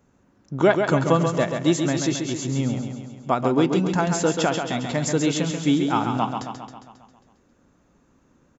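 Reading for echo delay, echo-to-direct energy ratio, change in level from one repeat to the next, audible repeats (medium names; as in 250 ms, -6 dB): 135 ms, -4.0 dB, -4.5 dB, 7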